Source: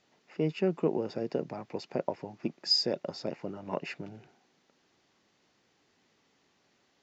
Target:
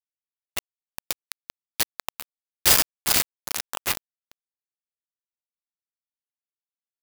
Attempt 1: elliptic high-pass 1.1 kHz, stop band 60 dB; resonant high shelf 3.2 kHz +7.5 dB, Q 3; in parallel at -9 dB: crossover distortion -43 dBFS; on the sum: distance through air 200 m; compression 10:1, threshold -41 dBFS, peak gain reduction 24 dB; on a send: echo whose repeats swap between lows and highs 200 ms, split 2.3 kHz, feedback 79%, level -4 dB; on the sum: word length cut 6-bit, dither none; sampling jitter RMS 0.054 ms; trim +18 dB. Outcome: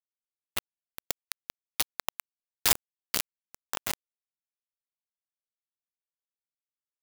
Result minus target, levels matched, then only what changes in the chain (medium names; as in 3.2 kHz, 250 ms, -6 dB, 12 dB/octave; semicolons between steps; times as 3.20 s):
compression: peak gain reduction +6.5 dB
change: compression 10:1, threshold -33.5 dBFS, peak gain reduction 17 dB